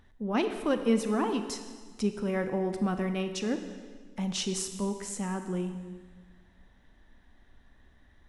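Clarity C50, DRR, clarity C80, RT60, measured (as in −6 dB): 8.5 dB, 7.5 dB, 10.0 dB, 1.6 s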